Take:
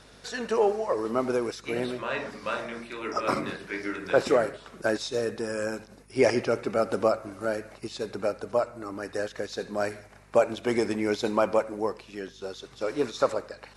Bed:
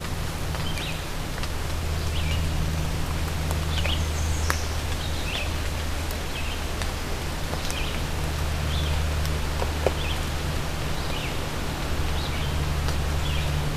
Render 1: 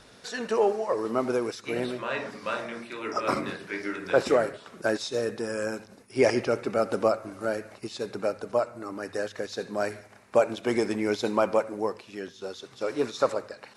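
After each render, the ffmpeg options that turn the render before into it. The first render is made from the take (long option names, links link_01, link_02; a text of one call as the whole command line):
ffmpeg -i in.wav -af "bandreject=frequency=50:width_type=h:width=4,bandreject=frequency=100:width_type=h:width=4,bandreject=frequency=150:width_type=h:width=4" out.wav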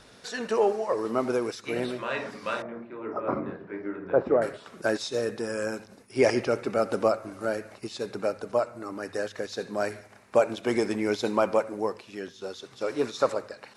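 ffmpeg -i in.wav -filter_complex "[0:a]asettb=1/sr,asplit=3[link_01][link_02][link_03];[link_01]atrim=end=2.624[link_04];[link_02]atrim=start=2.62:end=4.42,asetpts=PTS-STARTPTS,afade=type=in:duration=0.004:curve=qsin,afade=type=out:start_time=1.796:duration=0.004:curve=qsin,lowpass=1000[link_05];[link_03]atrim=start=4.416[link_06];[link_04][link_05]acrossfade=duration=0.004:curve1=hsin:curve2=qsin[link_07];[link_07][link_06]acrossfade=duration=0.004:curve1=qsin:curve2=hsin" out.wav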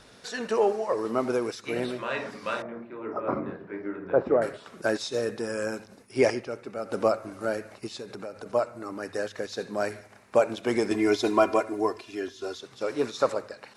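ffmpeg -i in.wav -filter_complex "[0:a]asettb=1/sr,asplit=3[link_01][link_02][link_03];[link_01]atrim=end=7.954[link_04];[link_02]atrim=start=7.95:end=8.46,asetpts=PTS-STARTPTS,afade=type=in:duration=0.004:curve=qsin,afade=type=out:start_time=0.506:duration=0.004:curve=qsin,acompressor=threshold=-35dB:ratio=4:attack=3.2:release=140:knee=1:detection=peak[link_05];[link_03]atrim=start=8.456[link_06];[link_04][link_05]acrossfade=duration=0.004:curve1=hsin:curve2=qsin[link_07];[link_07][link_06]acrossfade=duration=0.004:curve1=qsin:curve2=hsin,asettb=1/sr,asplit=3[link_08][link_09][link_10];[link_08]atrim=end=10.914[link_11];[link_09]atrim=start=10.91:end=12.58,asetpts=PTS-STARTPTS,afade=type=in:duration=0.004:curve=qsin,afade=type=out:start_time=1.666:duration=0.004:curve=qsin,aecho=1:1:2.9:1,atrim=end_sample=73647[link_12];[link_10]atrim=start=12.576[link_13];[link_11][link_12]acrossfade=duration=0.004:curve1=hsin:curve2=qsin[link_14];[link_14][link_13]acrossfade=duration=0.004:curve1=qsin:curve2=hsin,asplit=3[link_15][link_16][link_17];[link_15]atrim=end=6.41,asetpts=PTS-STARTPTS,afade=type=out:start_time=6.23:duration=0.18:silence=0.354813[link_18];[link_16]atrim=start=6.41:end=6.83,asetpts=PTS-STARTPTS,volume=-9dB[link_19];[link_17]atrim=start=6.83,asetpts=PTS-STARTPTS,afade=type=in:duration=0.18:silence=0.354813[link_20];[link_18][link_19][link_20]concat=n=3:v=0:a=1" out.wav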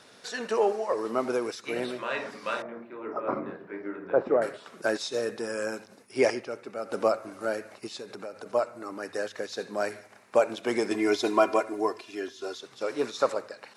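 ffmpeg -i in.wav -af "highpass=94,lowshelf=frequency=170:gain=-10" out.wav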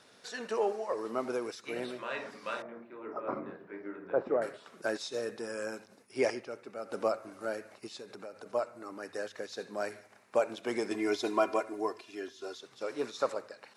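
ffmpeg -i in.wav -af "volume=-6dB" out.wav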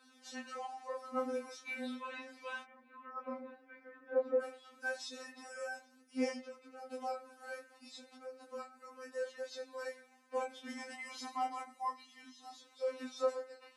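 ffmpeg -i in.wav -af "flanger=delay=20:depth=5.7:speed=0.33,afftfilt=real='re*3.46*eq(mod(b,12),0)':imag='im*3.46*eq(mod(b,12),0)':win_size=2048:overlap=0.75" out.wav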